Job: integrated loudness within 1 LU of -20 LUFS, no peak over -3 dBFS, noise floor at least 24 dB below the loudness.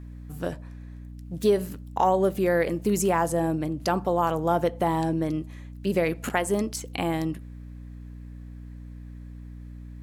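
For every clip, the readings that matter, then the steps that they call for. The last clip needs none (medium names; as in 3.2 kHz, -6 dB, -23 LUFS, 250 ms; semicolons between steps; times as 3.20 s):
hum 60 Hz; highest harmonic 300 Hz; hum level -38 dBFS; loudness -26.0 LUFS; peak level -10.5 dBFS; loudness target -20.0 LUFS
-> hum notches 60/120/180/240/300 Hz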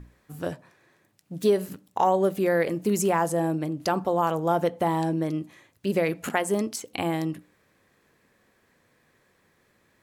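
hum not found; loudness -26.0 LUFS; peak level -10.5 dBFS; loudness target -20.0 LUFS
-> trim +6 dB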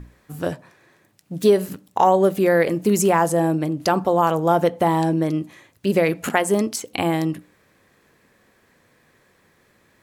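loudness -20.0 LUFS; peak level -4.5 dBFS; noise floor -61 dBFS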